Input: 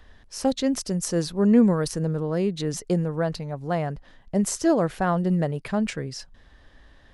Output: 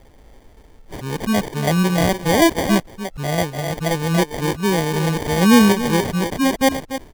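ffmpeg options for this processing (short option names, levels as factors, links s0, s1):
-filter_complex "[0:a]areverse,asplit=2[s0][s1];[s1]adelay=290,highpass=300,lowpass=3400,asoftclip=type=hard:threshold=0.126,volume=0.501[s2];[s0][s2]amix=inputs=2:normalize=0,acrusher=samples=33:mix=1:aa=0.000001,volume=1.88"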